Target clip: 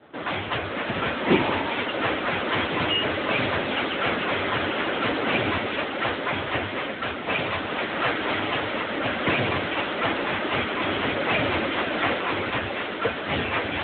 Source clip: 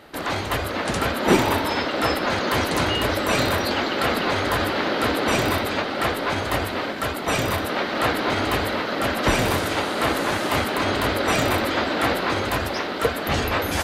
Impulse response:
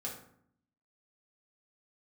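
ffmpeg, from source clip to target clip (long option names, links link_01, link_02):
-filter_complex "[0:a]adynamicequalizer=threshold=0.0112:dfrequency=2600:dqfactor=1.2:tfrequency=2600:tqfactor=1.2:attack=5:release=100:ratio=0.375:range=3:mode=boostabove:tftype=bell,asettb=1/sr,asplit=3[link_01][link_02][link_03];[link_01]atrim=end=7.004[link_04];[link_02]atrim=start=7:end=8.72,asetpts=PTS-STARTPTS,afade=type=in:duration=0.004:curve=qsin,afade=type=out:start_time=1.716:duration=0.004:curve=qsin,acrossover=split=340|3000[link_05][link_06][link_07];[link_05]acompressor=threshold=-28dB:ratio=4[link_08];[link_08][link_06][link_07]amix=inputs=3:normalize=0[link_09];[link_03]atrim=start=8.716[link_10];[link_04][link_09]acrossfade=duration=0.004:curve1=hsin:curve2=qsin[link_11];[link_11][link_10]acrossfade=duration=0.004:curve1=qsin:curve2=hsin,volume=-2dB" -ar 8000 -c:a libopencore_amrnb -b:a 10200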